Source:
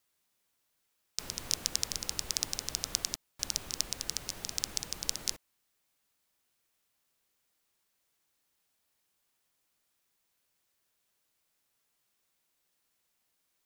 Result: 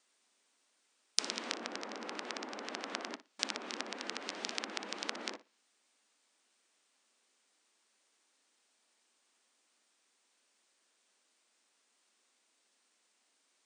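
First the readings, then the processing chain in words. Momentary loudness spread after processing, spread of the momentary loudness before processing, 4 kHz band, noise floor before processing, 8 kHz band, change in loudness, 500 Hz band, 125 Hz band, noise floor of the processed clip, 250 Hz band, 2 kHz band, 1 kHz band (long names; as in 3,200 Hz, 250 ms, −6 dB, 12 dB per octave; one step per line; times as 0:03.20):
7 LU, 5 LU, −4.5 dB, −78 dBFS, −10.5 dB, −5.5 dB, +6.5 dB, below −10 dB, −76 dBFS, +4.5 dB, +5.0 dB, +6.5 dB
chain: treble cut that deepens with the level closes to 1,500 Hz, closed at −36 dBFS
linear-phase brick-wall band-pass 200–9,600 Hz
flutter between parallel walls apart 10.1 metres, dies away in 0.23 s
level +6 dB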